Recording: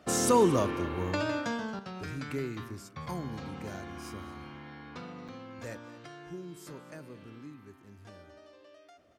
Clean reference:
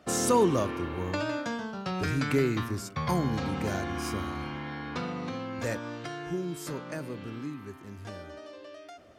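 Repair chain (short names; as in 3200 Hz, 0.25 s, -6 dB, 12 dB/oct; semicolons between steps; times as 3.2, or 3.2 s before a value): interpolate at 3.06/5.28, 5.5 ms; inverse comb 0.227 s -18 dB; gain correction +9.5 dB, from 1.79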